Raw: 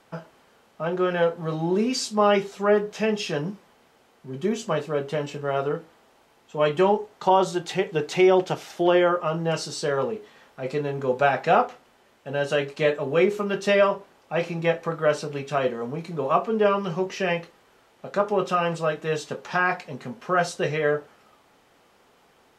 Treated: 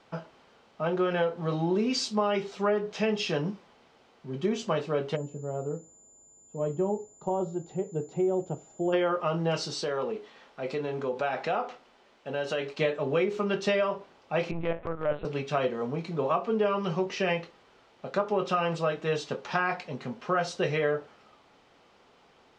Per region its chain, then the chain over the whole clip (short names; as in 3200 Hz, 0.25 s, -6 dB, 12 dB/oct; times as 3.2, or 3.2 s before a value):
5.15–8.92 EQ curve 110 Hz 0 dB, 620 Hz -8 dB, 2300 Hz -27 dB + whine 7100 Hz -48 dBFS
9.82–12.79 bell 96 Hz -10.5 dB 1.2 oct + compressor 2.5:1, threshold -27 dBFS
14.51–15.25 air absorption 400 m + LPC vocoder at 8 kHz pitch kept + transient shaper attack -8 dB, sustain -1 dB
whole clip: Chebyshev low-pass 4800 Hz, order 2; bell 1700 Hz -3 dB 0.3 oct; compressor 10:1, threshold -22 dBFS